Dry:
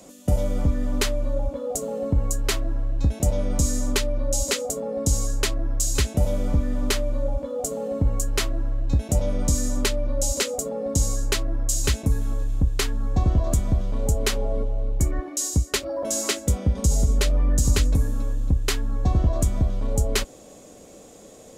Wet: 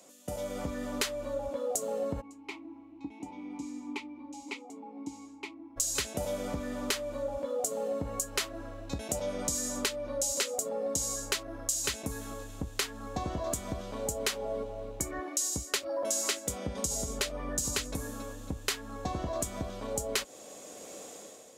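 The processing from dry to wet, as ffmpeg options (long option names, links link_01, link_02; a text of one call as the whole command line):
ffmpeg -i in.wav -filter_complex "[0:a]asplit=3[link_01][link_02][link_03];[link_01]afade=type=out:start_time=2.2:duration=0.02[link_04];[link_02]asplit=3[link_05][link_06][link_07];[link_05]bandpass=frequency=300:width_type=q:width=8,volume=0dB[link_08];[link_06]bandpass=frequency=870:width_type=q:width=8,volume=-6dB[link_09];[link_07]bandpass=frequency=2240:width_type=q:width=8,volume=-9dB[link_10];[link_08][link_09][link_10]amix=inputs=3:normalize=0,afade=type=in:start_time=2.2:duration=0.02,afade=type=out:start_time=5.76:duration=0.02[link_11];[link_03]afade=type=in:start_time=5.76:duration=0.02[link_12];[link_04][link_11][link_12]amix=inputs=3:normalize=0,dynaudnorm=framelen=110:gausssize=9:maxgain=11.5dB,highpass=frequency=630:poles=1,acompressor=threshold=-24dB:ratio=2.5,volume=-6.5dB" out.wav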